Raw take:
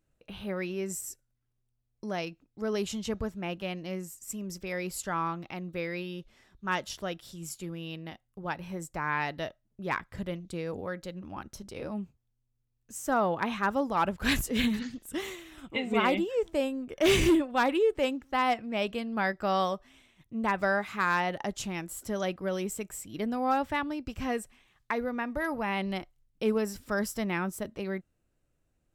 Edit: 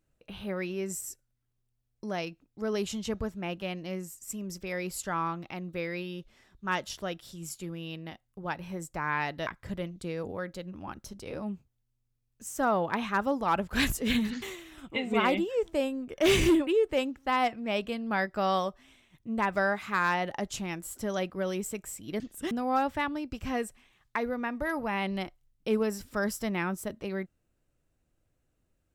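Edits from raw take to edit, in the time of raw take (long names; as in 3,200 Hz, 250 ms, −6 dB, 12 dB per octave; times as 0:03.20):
0:09.47–0:09.96: remove
0:14.91–0:15.22: move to 0:23.26
0:17.47–0:17.73: remove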